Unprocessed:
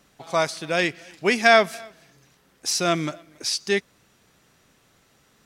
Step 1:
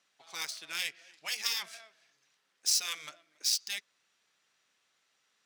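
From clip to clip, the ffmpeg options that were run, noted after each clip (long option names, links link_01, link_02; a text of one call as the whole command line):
ffmpeg -i in.wav -af "afftfilt=real='re*lt(hypot(re,im),0.316)':imag='im*lt(hypot(re,im),0.316)':win_size=1024:overlap=0.75,adynamicsmooth=sensitivity=3.5:basefreq=3700,aderivative,volume=1.5dB" out.wav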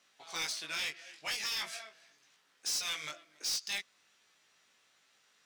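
ffmpeg -i in.wav -af "alimiter=limit=-20dB:level=0:latency=1:release=180,flanger=delay=17.5:depth=3:speed=0.43,asoftclip=type=tanh:threshold=-38.5dB,volume=8.5dB" out.wav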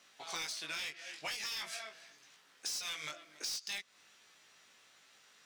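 ffmpeg -i in.wav -af "acompressor=threshold=-44dB:ratio=6,volume=5.5dB" out.wav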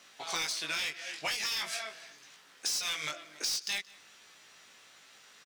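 ffmpeg -i in.wav -af "aecho=1:1:176:0.0708,volume=6.5dB" out.wav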